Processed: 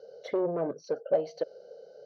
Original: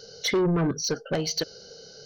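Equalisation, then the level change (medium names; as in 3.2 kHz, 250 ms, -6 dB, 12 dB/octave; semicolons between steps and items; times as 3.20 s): band-pass filter 580 Hz, Q 4.8; +7.0 dB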